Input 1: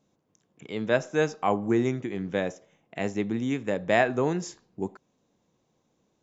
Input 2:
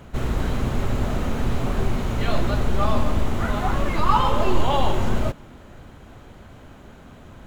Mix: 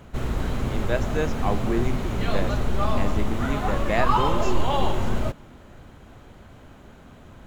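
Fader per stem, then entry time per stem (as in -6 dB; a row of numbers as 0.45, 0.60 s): -2.5, -2.5 dB; 0.00, 0.00 s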